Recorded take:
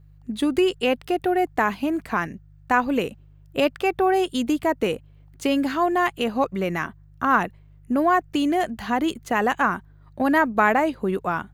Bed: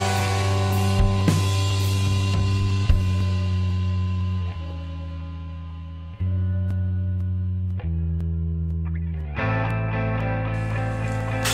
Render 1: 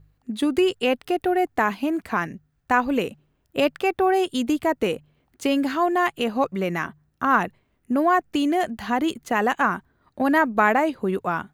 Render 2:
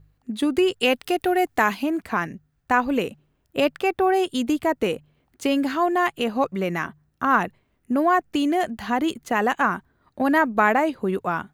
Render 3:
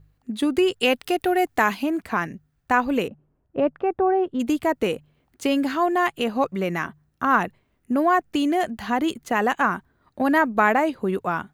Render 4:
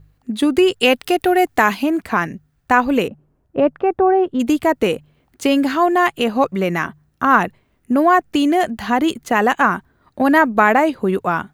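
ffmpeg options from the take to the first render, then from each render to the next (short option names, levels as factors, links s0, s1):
-af "bandreject=f=50:t=h:w=4,bandreject=f=100:t=h:w=4,bandreject=f=150:t=h:w=4"
-filter_complex "[0:a]asettb=1/sr,asplit=3[s0][s1][s2];[s0]atrim=end=0.804[s3];[s1]atrim=start=0.8:end=1.83,asetpts=PTS-STARTPTS,afade=t=in:d=0.004:c=qsin,afade=t=out:st=1.026:d=0.004:c=qsin,highshelf=f=2200:g=8[s4];[s2]atrim=start=1.826[s5];[s3][s4]acrossfade=d=0.004:c1=hsin:c2=qsin[s6];[s6][s5]acrossfade=d=0.004:c1=qsin:c2=hsin"
-filter_complex "[0:a]asplit=3[s0][s1][s2];[s0]afade=t=out:st=3.07:d=0.02[s3];[s1]lowpass=1100,afade=t=in:st=3.07:d=0.02,afade=t=out:st=4.39:d=0.02[s4];[s2]afade=t=in:st=4.39:d=0.02[s5];[s3][s4][s5]amix=inputs=3:normalize=0"
-af "volume=2,alimiter=limit=0.891:level=0:latency=1"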